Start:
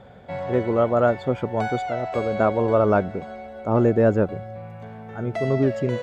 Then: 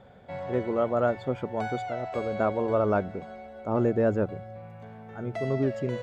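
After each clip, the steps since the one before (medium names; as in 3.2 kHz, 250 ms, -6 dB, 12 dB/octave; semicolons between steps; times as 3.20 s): de-hum 57.37 Hz, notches 3; trim -6 dB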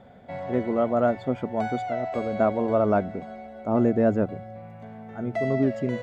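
small resonant body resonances 240/670/2000 Hz, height 7 dB, ringing for 30 ms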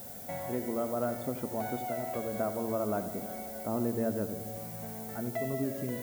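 compression 2:1, threshold -38 dBFS, peak gain reduction 12 dB; added noise violet -46 dBFS; filtered feedback delay 84 ms, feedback 73%, low-pass 2 kHz, level -10.5 dB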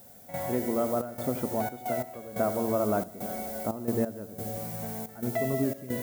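trance gate "..xxxx.xxx.x" 89 bpm -12 dB; trim +5 dB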